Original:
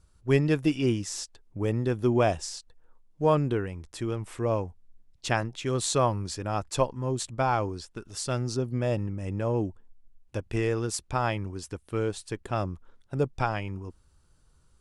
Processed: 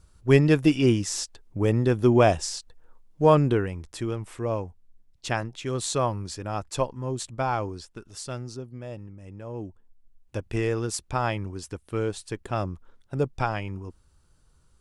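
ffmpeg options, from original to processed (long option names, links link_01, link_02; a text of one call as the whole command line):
ffmpeg -i in.wav -af "volume=16.5dB,afade=type=out:start_time=3.49:duration=0.85:silence=0.501187,afade=type=out:start_time=7.83:duration=0.89:silence=0.334965,afade=type=in:start_time=9.46:duration=0.93:silence=0.266073" out.wav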